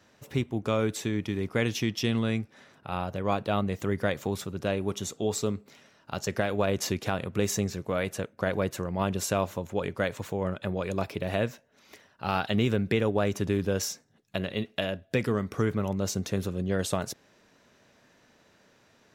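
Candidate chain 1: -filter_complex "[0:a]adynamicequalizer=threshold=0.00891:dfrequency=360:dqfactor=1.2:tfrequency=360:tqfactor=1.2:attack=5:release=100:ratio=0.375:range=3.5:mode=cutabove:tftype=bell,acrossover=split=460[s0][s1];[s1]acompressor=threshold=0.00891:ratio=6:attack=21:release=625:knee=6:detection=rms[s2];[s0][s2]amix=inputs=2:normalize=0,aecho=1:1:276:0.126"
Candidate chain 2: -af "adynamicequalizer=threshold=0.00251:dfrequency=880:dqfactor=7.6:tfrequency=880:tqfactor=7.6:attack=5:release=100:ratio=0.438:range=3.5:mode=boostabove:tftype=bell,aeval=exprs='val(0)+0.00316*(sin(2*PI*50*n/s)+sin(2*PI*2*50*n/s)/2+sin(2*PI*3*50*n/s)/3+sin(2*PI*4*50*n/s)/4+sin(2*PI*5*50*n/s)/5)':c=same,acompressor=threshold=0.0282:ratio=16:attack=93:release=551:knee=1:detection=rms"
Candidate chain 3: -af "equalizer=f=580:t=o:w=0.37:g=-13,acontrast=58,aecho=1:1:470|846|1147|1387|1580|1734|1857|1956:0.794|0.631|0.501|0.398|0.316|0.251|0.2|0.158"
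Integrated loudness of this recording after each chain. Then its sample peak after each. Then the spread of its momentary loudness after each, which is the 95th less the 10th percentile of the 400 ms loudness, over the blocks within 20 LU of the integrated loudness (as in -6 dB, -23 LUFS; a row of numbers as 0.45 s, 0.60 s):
-34.0 LUFS, -36.0 LUFS, -21.5 LUFS; -16.0 dBFS, -12.5 dBFS, -4.0 dBFS; 8 LU, 17 LU, 6 LU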